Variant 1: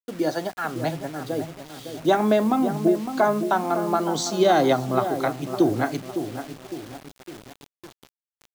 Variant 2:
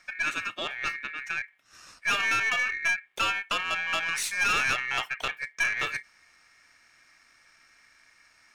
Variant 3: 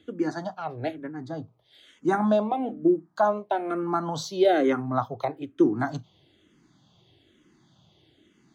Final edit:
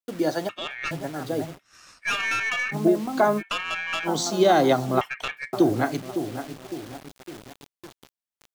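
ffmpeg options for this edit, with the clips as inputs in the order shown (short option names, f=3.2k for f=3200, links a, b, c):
-filter_complex "[1:a]asplit=4[a][b][c][d];[0:a]asplit=5[e][f][g][h][i];[e]atrim=end=0.492[j];[a]atrim=start=0.488:end=0.912[k];[f]atrim=start=0.908:end=1.59[l];[b]atrim=start=1.55:end=2.75[m];[g]atrim=start=2.71:end=3.43[n];[c]atrim=start=3.37:end=4.09[o];[h]atrim=start=4.03:end=5.012[p];[d]atrim=start=5.008:end=5.532[q];[i]atrim=start=5.528[r];[j][k]acrossfade=d=0.004:c1=hsin:c2=hsin[s];[s][l]acrossfade=d=0.004:c1=hsin:c2=hsin[t];[t][m]acrossfade=d=0.04:c1=tri:c2=tri[u];[u][n]acrossfade=d=0.04:c1=tri:c2=tri[v];[v][o]acrossfade=d=0.06:c1=tri:c2=tri[w];[w][p]acrossfade=d=0.06:c1=tri:c2=tri[x];[x][q]acrossfade=d=0.004:c1=hsin:c2=hsin[y];[y][r]acrossfade=d=0.004:c1=hsin:c2=hsin"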